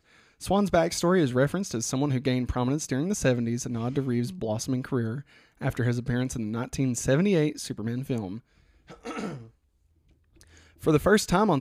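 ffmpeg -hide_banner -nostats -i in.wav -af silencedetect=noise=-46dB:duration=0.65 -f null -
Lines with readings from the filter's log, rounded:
silence_start: 9.48
silence_end: 10.41 | silence_duration: 0.93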